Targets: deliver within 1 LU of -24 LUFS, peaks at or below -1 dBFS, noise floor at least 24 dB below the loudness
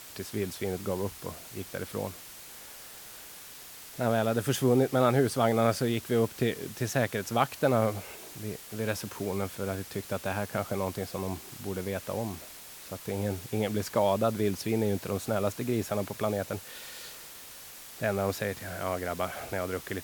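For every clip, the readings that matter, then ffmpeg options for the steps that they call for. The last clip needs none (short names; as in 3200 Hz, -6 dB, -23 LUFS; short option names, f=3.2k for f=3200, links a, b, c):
noise floor -47 dBFS; noise floor target -55 dBFS; loudness -30.5 LUFS; peak -9.0 dBFS; loudness target -24.0 LUFS
-> -af "afftdn=nr=8:nf=-47"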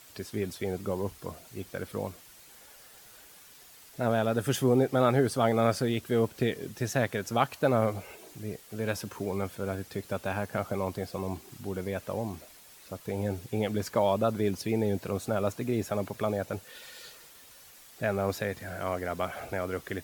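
noise floor -53 dBFS; noise floor target -55 dBFS
-> -af "afftdn=nr=6:nf=-53"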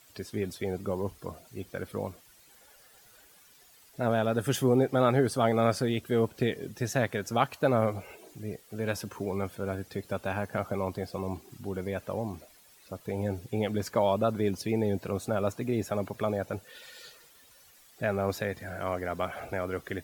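noise floor -58 dBFS; loudness -30.5 LUFS; peak -9.0 dBFS; loudness target -24.0 LUFS
-> -af "volume=6.5dB"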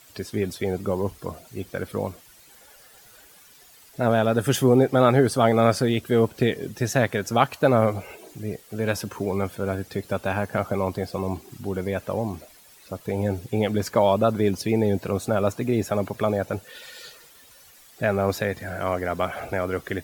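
loudness -24.0 LUFS; peak -2.5 dBFS; noise floor -52 dBFS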